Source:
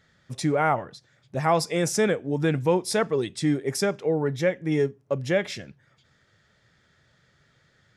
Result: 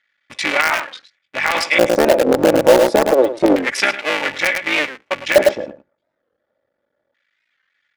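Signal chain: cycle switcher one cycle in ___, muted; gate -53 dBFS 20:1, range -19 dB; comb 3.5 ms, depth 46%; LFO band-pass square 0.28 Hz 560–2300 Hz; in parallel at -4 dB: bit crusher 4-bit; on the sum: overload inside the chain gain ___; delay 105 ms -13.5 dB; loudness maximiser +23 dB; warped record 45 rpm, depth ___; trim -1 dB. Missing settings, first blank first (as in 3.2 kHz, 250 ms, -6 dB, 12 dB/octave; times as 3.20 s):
3, 12.5 dB, 160 cents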